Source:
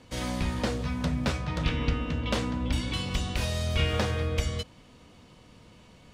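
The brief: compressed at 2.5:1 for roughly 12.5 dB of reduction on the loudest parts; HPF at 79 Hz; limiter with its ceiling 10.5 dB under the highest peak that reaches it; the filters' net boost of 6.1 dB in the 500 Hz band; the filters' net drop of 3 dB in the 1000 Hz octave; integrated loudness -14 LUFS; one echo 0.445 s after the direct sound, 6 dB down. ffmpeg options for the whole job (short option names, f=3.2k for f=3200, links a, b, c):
-af "highpass=79,equalizer=f=500:t=o:g=8.5,equalizer=f=1k:t=o:g=-7,acompressor=threshold=-41dB:ratio=2.5,alimiter=level_in=9.5dB:limit=-24dB:level=0:latency=1,volume=-9.5dB,aecho=1:1:445:0.501,volume=28dB"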